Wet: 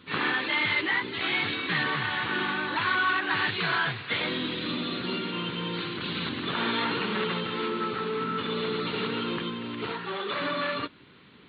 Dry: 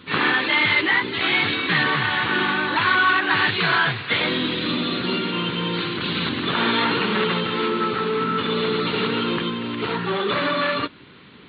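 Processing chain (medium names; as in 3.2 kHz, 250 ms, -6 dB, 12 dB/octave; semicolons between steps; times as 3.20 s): 9.92–10.40 s: bass shelf 240 Hz -11 dB; trim -7.5 dB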